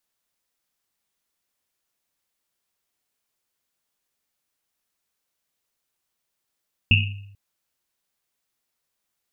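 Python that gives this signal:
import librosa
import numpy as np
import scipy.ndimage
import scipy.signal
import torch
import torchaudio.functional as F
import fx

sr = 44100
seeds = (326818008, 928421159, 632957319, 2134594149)

y = fx.risset_drum(sr, seeds[0], length_s=0.44, hz=100.0, decay_s=0.85, noise_hz=2700.0, noise_width_hz=320.0, noise_pct=45)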